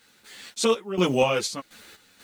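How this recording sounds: a quantiser's noise floor 10-bit, dither none; random-step tremolo 4.1 Hz, depth 85%; a shimmering, thickened sound

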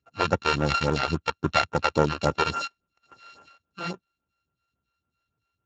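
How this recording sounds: a buzz of ramps at a fixed pitch in blocks of 32 samples; phasing stages 2, 3.6 Hz, lowest notch 140–4200 Hz; Speex

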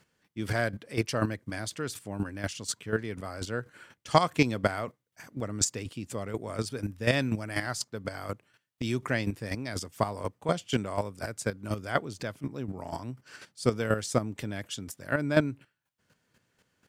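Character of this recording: chopped level 4.1 Hz, depth 65%, duty 15%

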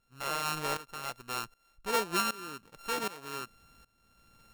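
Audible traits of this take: a buzz of ramps at a fixed pitch in blocks of 32 samples; tremolo saw up 1.3 Hz, depth 90%

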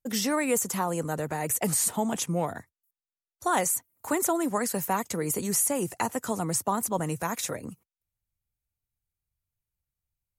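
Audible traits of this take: noise floor -95 dBFS; spectral tilt -3.5 dB/octave

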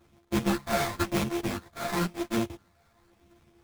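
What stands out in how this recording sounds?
a buzz of ramps at a fixed pitch in blocks of 128 samples; phasing stages 12, 0.97 Hz, lowest notch 330–2300 Hz; aliases and images of a low sample rate 2.9 kHz, jitter 20%; a shimmering, thickened sound

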